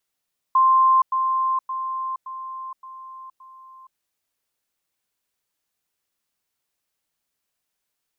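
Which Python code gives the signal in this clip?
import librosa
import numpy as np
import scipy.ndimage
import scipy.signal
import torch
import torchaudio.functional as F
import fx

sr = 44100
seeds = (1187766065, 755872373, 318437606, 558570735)

y = fx.level_ladder(sr, hz=1050.0, from_db=-12.5, step_db=-6.0, steps=6, dwell_s=0.47, gap_s=0.1)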